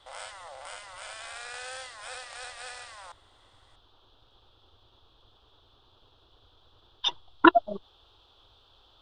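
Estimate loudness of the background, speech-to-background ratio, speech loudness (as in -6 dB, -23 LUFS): -41.0 LUFS, 16.0 dB, -25.0 LUFS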